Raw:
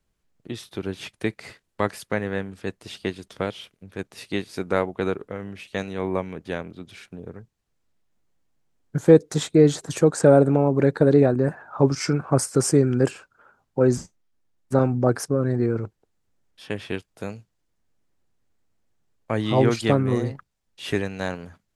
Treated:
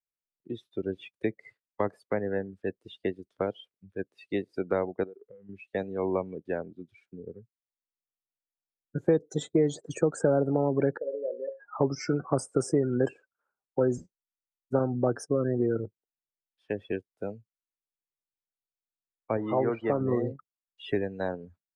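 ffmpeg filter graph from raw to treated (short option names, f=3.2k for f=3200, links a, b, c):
-filter_complex "[0:a]asettb=1/sr,asplit=3[a][b][c];[a]atrim=end=5.034[d];[b]atrim=start=5.03:end=5.49,asetpts=PTS-STARTPTS,afade=t=in:d=0.004:c=qsin,afade=t=out:st=0.456:d=0.004:c=qsin,equalizer=f=730:t=o:w=0.2:g=4.5,acompressor=threshold=-39dB:ratio=5:attack=3.2:release=140:knee=1:detection=peak[e];[c]atrim=start=5.486[f];[d][e]acrossfade=d=0.004:c1=hsin:c2=qsin[g];[g][f]acrossfade=d=0.004:c1=qsin:c2=hsin,asettb=1/sr,asplit=3[h][i][j];[h]atrim=end=10.974[k];[i]atrim=start=10.97:end=11.6,asetpts=PTS-STARTPTS,afade=t=in:d=0.004:c=qsin,afade=t=out:st=0.626:d=0.004:c=qsin,bandreject=f=60:t=h:w=6,bandreject=f=120:t=h:w=6,bandreject=f=180:t=h:w=6,bandreject=f=240:t=h:w=6,bandreject=f=300:t=h:w=6,bandreject=f=360:t=h:w=6,bandreject=f=420:t=h:w=6,bandreject=f=480:t=h:w=6,bandreject=f=540:t=h:w=6,acompressor=threshold=-18dB:ratio=6:attack=3.2:release=140:knee=1:detection=peak,asplit=3[l][m][n];[l]bandpass=f=530:t=q:w=8,volume=0dB[o];[m]bandpass=f=1.84k:t=q:w=8,volume=-6dB[p];[n]bandpass=f=2.48k:t=q:w=8,volume=-9dB[q];[o][p][q]amix=inputs=3:normalize=0[r];[j]atrim=start=11.596[s];[k][r]acrossfade=d=0.004:c1=hsin:c2=qsin[t];[t][s]acrossfade=d=0.004:c1=qsin:c2=hsin,asettb=1/sr,asplit=3[u][v][w];[u]atrim=end=19.374[x];[v]atrim=start=19.37:end=20.01,asetpts=PTS-STARTPTS,afade=t=in:d=0.004:c=qsin,afade=t=out:st=0.636:d=0.004:c=qsin,aeval=exprs='val(0)+0.5*0.0447*sgn(val(0))':c=same,lowpass=1.9k,lowshelf=f=320:g=-9.5[y];[w]atrim=start=20.006[z];[x][y]acrossfade=d=0.004:c1=hsin:c2=qsin[aa];[aa][z]acrossfade=d=0.004:c1=qsin:c2=hsin,afftdn=nr=29:nf=-31,bass=f=250:g=-9,treble=f=4k:g=-3,acrossover=split=210|900|1800|4400[ab][ac][ad][ae][af];[ab]acompressor=threshold=-31dB:ratio=4[ag];[ac]acompressor=threshold=-25dB:ratio=4[ah];[ad]acompressor=threshold=-45dB:ratio=4[ai];[ae]acompressor=threshold=-52dB:ratio=4[aj];[af]acompressor=threshold=-43dB:ratio=4[ak];[ag][ah][ai][aj][ak]amix=inputs=5:normalize=0,volume=1dB"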